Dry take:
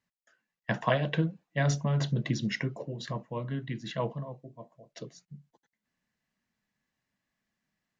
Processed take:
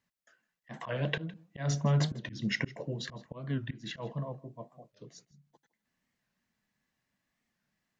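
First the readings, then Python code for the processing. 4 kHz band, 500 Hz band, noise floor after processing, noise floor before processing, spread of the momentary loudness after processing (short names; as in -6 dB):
-0.5 dB, -5.5 dB, -85 dBFS, under -85 dBFS, 22 LU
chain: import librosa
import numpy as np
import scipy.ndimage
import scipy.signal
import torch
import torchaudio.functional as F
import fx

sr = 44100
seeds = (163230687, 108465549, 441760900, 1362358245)

y = fx.auto_swell(x, sr, attack_ms=223.0)
y = y + 10.0 ** (-21.0 / 20.0) * np.pad(y, (int(160 * sr / 1000.0), 0))[:len(y)]
y = fx.record_warp(y, sr, rpm=45.0, depth_cents=160.0)
y = F.gain(torch.from_numpy(y), 1.5).numpy()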